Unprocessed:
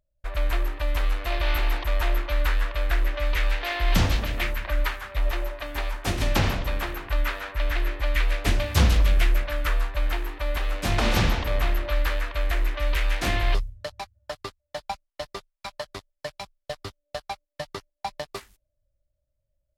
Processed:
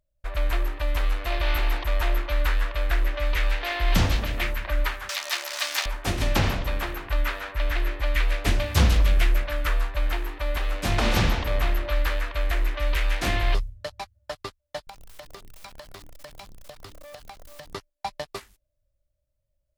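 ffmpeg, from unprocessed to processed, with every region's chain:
-filter_complex "[0:a]asettb=1/sr,asplit=3[a][b][c];[a]atrim=end=5.094[d];[b]atrim=start=5.09:end=5.86,asetpts=PTS-STARTPTS,afade=t=in:d=0.004:c=qsin,afade=t=out:st=0.766:d=0.004:c=qsin,aeval=exprs='val(0)+0.5*0.0316*sgn(val(0))':c=same,highpass=840,equalizer=f=5.5k:t=o:w=1.7:g=14.5[e];[c]atrim=start=5.856[f];[d][e]acrossfade=d=0.004:c1=hsin:c2=qsin[g];[g][f]acrossfade=d=0.004:c1=qsin:c2=hsin,asettb=1/sr,asplit=3[h][i][j];[h]atrim=end=14.874[k];[i]atrim=start=14.87:end=17.74,asetpts=PTS-STARTPTS,afade=t=in:d=0.004:c=qsin,afade=t=out:st=2.866:d=0.004:c=qsin,aeval=exprs='val(0)+0.5*0.0141*sgn(val(0))':c=same,bandreject=f=60:t=h:w=6,bandreject=f=120:t=h:w=6,bandreject=f=180:t=h:w=6,bandreject=f=240:t=h:w=6,bandreject=f=300:t=h:w=6,bandreject=f=360:t=h:w=6,bandreject=f=420:t=h:w=6,acompressor=threshold=-38dB:ratio=16:attack=3.2:release=140:knee=1:detection=peak[l];[j]atrim=start=17.736[m];[k][l]acrossfade=d=0.004:c1=hsin:c2=qsin[n];[n][m]acrossfade=d=0.004:c1=qsin:c2=hsin"

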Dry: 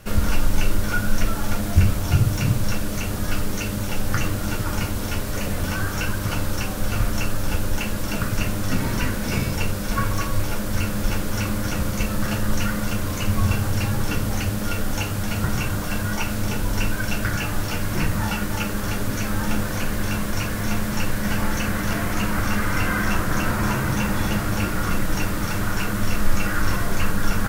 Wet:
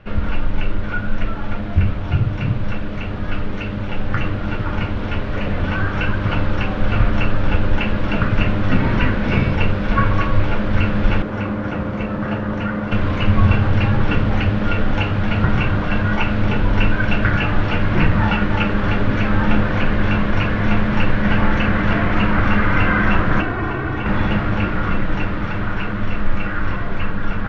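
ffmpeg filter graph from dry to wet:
-filter_complex "[0:a]asettb=1/sr,asplit=3[a][b][c];[a]atrim=end=11.224[d];[b]atrim=start=11.22:end=12.92,asetpts=PTS-STARTPTS,afade=t=in:d=0.004:c=qsin,afade=t=out:st=1.696:d=0.004:c=qsin,highpass=f=190:p=1,equalizer=f=3.8k:w=0.49:g=-9.5[e];[c]atrim=start=12.916[f];[d][e]acrossfade=d=0.004:c1=hsin:c2=qsin[g];[g][f]acrossfade=d=0.004:c1=qsin:c2=hsin,asettb=1/sr,asplit=3[h][i][j];[h]atrim=end=23.414[k];[i]atrim=start=23.41:end=24.06,asetpts=PTS-STARTPTS,afade=t=in:d=0.004:c=qsin,afade=t=out:st=0.646:d=0.004:c=qsin,aecho=1:1:2.7:0.74,atrim=end_sample=28665,acrossover=split=93|480|1000|4100[l][m][n][o][p];[l]acompressor=threshold=-35dB:ratio=3[q];[m]acompressor=threshold=-29dB:ratio=3[r];[n]acompressor=threshold=-37dB:ratio=3[s];[o]acompressor=threshold=-36dB:ratio=3[t];[p]acompressor=threshold=-46dB:ratio=3[u];[q][r][s][t][u]amix=inputs=5:normalize=0[v];[j]atrim=start=24.056[w];[k][v]acrossfade=d=0.004:c1=hsin:c2=qsin[x];[x][w]acrossfade=d=0.004:c1=qsin:c2=hsin,lowpass=f=3.1k:w=0.5412,lowpass=f=3.1k:w=1.3066,dynaudnorm=f=580:g=11:m=11.5dB"

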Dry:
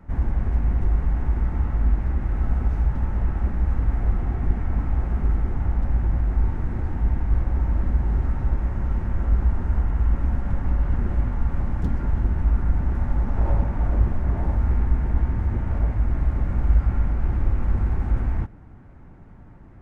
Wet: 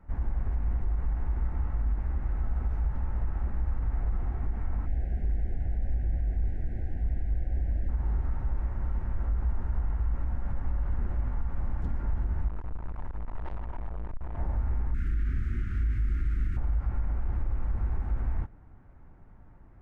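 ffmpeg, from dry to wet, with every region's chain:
-filter_complex "[0:a]asettb=1/sr,asplit=3[a][b][c];[a]atrim=end=4.864[d];[b]atrim=start=4.86:end=7.89,asetpts=PTS-STARTPTS,afade=t=in:d=0.004:c=qsin,afade=t=out:st=3.026:d=0.004:c=qsin,asuperstop=centerf=1100:order=8:qfactor=1.4,asoftclip=type=hard:threshold=-14dB[e];[c]atrim=start=7.886[f];[d][e]acrossfade=d=0.004:c1=hsin:c2=qsin[g];[g][f]acrossfade=d=0.004:c1=qsin:c2=hsin,asettb=1/sr,asplit=3[h][i][j];[h]atrim=end=12.484[k];[i]atrim=start=12.48:end=14.37,asetpts=PTS-STARTPTS,afade=t=in:d=0.004:c=qsin,afade=t=out:st=1.886:d=0.004:c=qsin,equalizer=f=930:t=o:w=0.83:g=7,aecho=1:1:3.1:0.78,atrim=end_sample=83349,aeval=exprs='(tanh(25.1*val(0)+0.75)-tanh(0.75))/25.1':c=same[l];[j]atrim=start=14.366[m];[k][l]acrossfade=d=0.004:c1=hsin:c2=qsin[n];[n][m]acrossfade=d=0.004:c1=qsin:c2=hsin,asettb=1/sr,asplit=3[o][p][q];[o]atrim=end=14.944[r];[p]atrim=start=14.94:end=16.57,asetpts=PTS-STARTPTS,afade=t=in:d=0.004:c=qsin,afade=t=out:st=1.626:d=0.004:c=qsin,asuperstop=centerf=700:order=12:qfactor=0.77,highshelf=f=2k:g=11,asplit=2[s][t];[t]adelay=38,volume=-3dB[u];[s][u]amix=inputs=2:normalize=0,atrim=end_sample=71883[v];[q]atrim=start=16.566[w];[r][v]acrossfade=d=0.004:c1=hsin:c2=qsin[x];[x][w]acrossfade=d=0.004:c1=qsin:c2=hsin,equalizer=f=200:w=0.36:g=-8.5,alimiter=limit=-18dB:level=0:latency=1:release=46,highshelf=f=2k:g=-11.5,volume=-2.5dB"

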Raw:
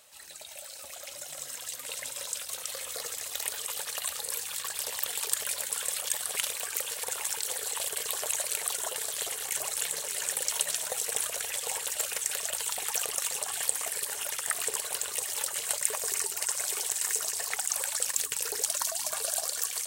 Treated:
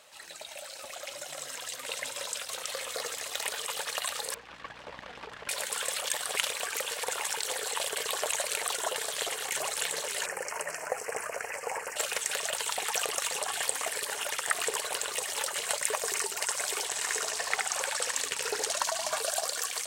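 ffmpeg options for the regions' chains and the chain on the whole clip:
-filter_complex "[0:a]asettb=1/sr,asplit=3[a][b][c];[a]atrim=end=4.344[d];[b]atrim=start=4.34:end=5.49,asetpts=PTS-STARTPTS,afade=t=in:d=0.004:c=qsin,afade=t=out:st=1.146:d=0.004:c=qsin,lowpass=1.8k,aeval=exprs='max(val(0),0)':c=same,aeval=exprs='val(0)+0.001*(sin(2*PI*60*n/s)+sin(2*PI*2*60*n/s)/2+sin(2*PI*3*60*n/s)/3+sin(2*PI*4*60*n/s)/4+sin(2*PI*5*60*n/s)/5)':c=same[e];[c]atrim=start=5.486[f];[d][e]acrossfade=d=0.004:c1=hsin:c2=qsin[g];[g][f]acrossfade=d=0.004:c1=qsin:c2=hsin,asettb=1/sr,asplit=3[h][i][j];[h]atrim=end=10.264[k];[i]atrim=start=10.26:end=11.96,asetpts=PTS-STARTPTS,afade=t=in:d=0.004:c=qsin,afade=t=out:st=1.696:d=0.004:c=qsin,asuperstop=centerf=3600:order=4:qfactor=1.3,bass=f=250:g=-1,treble=f=4k:g=-9[l];[j]atrim=start=11.956[m];[k][l]acrossfade=d=0.004:c1=hsin:c2=qsin[n];[n][m]acrossfade=d=0.004:c1=qsin:c2=hsin,asettb=1/sr,asplit=3[o][p][q];[o]atrim=end=16.854[r];[p]atrim=start=16.85:end=19.17,asetpts=PTS-STARTPTS,afade=t=in:d=0.004:c=qsin,afade=t=out:st=2.316:d=0.004:c=qsin,highshelf=f=11k:g=-9.5,aecho=1:1:73:0.596,atrim=end_sample=102312[s];[q]atrim=start=19.166[t];[r][s]acrossfade=d=0.004:c1=hsin:c2=qsin[u];[u][t]acrossfade=d=0.004:c1=qsin:c2=hsin,highpass=f=230:p=1,aemphasis=mode=reproduction:type=50kf,volume=6.5dB"

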